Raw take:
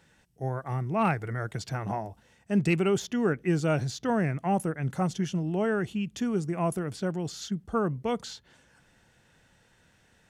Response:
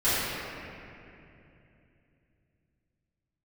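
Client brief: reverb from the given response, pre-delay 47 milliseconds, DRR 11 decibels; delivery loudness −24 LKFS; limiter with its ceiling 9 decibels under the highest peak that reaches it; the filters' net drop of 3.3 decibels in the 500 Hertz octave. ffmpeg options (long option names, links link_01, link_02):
-filter_complex "[0:a]equalizer=frequency=500:width_type=o:gain=-4.5,alimiter=limit=-21dB:level=0:latency=1,asplit=2[link_01][link_02];[1:a]atrim=start_sample=2205,adelay=47[link_03];[link_02][link_03]afir=irnorm=-1:irlink=0,volume=-26.5dB[link_04];[link_01][link_04]amix=inputs=2:normalize=0,volume=7.5dB"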